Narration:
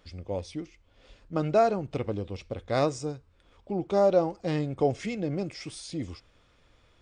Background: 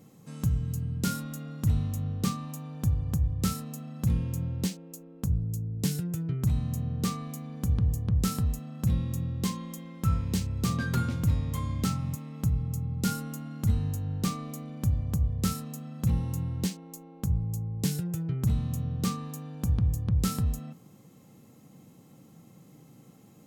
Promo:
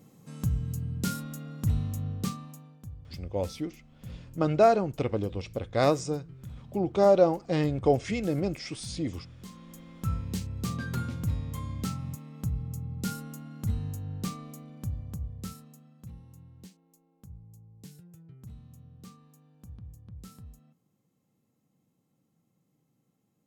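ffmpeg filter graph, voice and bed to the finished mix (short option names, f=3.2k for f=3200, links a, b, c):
-filter_complex "[0:a]adelay=3050,volume=2dB[a];[1:a]volume=11dB,afade=t=out:st=2.09:d=0.72:silence=0.16788,afade=t=in:st=9.45:d=0.51:silence=0.237137,afade=t=out:st=14.17:d=1.96:silence=0.16788[b];[a][b]amix=inputs=2:normalize=0"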